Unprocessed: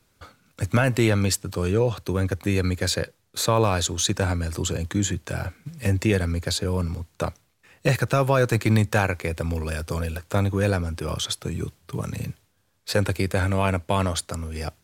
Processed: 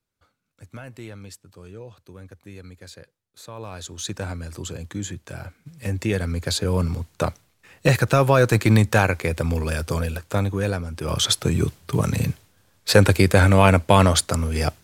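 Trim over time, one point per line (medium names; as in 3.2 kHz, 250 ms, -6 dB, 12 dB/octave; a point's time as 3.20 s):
3.49 s -18.5 dB
4.09 s -6.5 dB
5.61 s -6.5 dB
6.77 s +3.5 dB
9.90 s +3.5 dB
10.89 s -3.5 dB
11.27 s +8 dB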